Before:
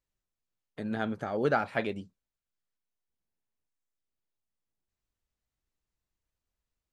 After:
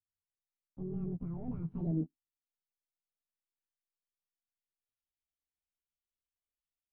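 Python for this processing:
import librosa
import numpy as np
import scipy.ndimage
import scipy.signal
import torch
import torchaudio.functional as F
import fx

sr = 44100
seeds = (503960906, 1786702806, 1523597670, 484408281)

y = fx.pitch_glide(x, sr, semitones=11.5, runs='ending unshifted')
y = fx.leveller(y, sr, passes=5)
y = fx.filter_sweep_lowpass(y, sr, from_hz=140.0, to_hz=3200.0, start_s=1.72, end_s=3.75, q=2.9)
y = y * 10.0 ** (-8.0 / 20.0)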